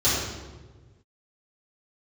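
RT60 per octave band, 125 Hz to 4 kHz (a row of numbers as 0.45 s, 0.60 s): 2.0 s, 1.6 s, 1.6 s, 1.2 s, 1.0 s, 0.90 s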